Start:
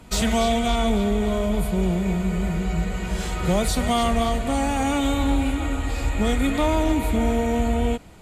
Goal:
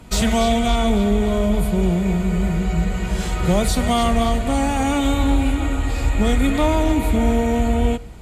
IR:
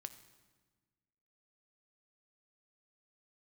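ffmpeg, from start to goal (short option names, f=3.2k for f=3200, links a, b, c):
-filter_complex "[0:a]asplit=2[a][b];[b]lowshelf=f=320:g=8.5[c];[1:a]atrim=start_sample=2205[d];[c][d]afir=irnorm=-1:irlink=0,volume=-5.5dB[e];[a][e]amix=inputs=2:normalize=0"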